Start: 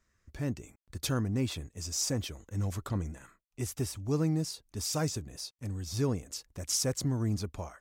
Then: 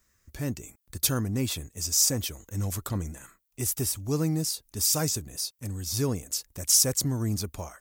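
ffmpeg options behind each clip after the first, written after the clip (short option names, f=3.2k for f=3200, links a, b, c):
-af "aemphasis=mode=production:type=50fm,volume=2.5dB"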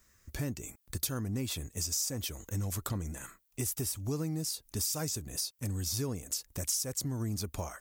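-af "acompressor=threshold=-35dB:ratio=5,volume=3dB"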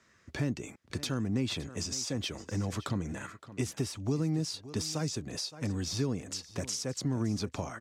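-filter_complex "[0:a]highpass=140,lowpass=3.9k,aecho=1:1:567:0.133,acrossover=split=320|3000[a][b][c];[b]acompressor=threshold=-43dB:ratio=6[d];[a][d][c]amix=inputs=3:normalize=0,volume=6.5dB"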